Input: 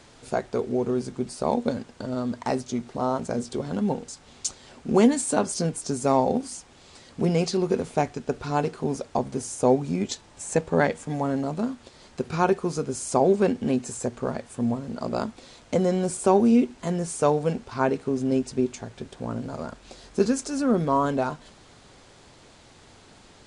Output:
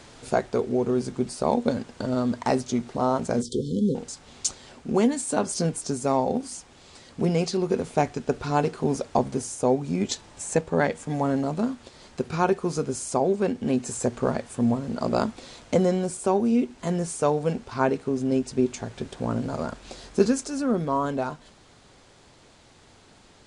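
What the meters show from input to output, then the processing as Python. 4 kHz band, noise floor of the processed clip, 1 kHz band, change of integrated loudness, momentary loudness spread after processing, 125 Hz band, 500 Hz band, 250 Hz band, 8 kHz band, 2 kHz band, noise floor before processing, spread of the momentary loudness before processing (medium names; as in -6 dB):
+1.0 dB, -54 dBFS, -0.5 dB, -0.5 dB, 8 LU, +0.5 dB, -0.5 dB, -0.5 dB, +0.5 dB, 0.0 dB, -52 dBFS, 12 LU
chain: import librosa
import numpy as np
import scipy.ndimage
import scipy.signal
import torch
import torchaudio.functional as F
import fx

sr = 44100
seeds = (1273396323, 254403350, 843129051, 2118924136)

y = fx.spec_erase(x, sr, start_s=3.42, length_s=0.53, low_hz=520.0, high_hz=3000.0)
y = fx.rider(y, sr, range_db=4, speed_s=0.5)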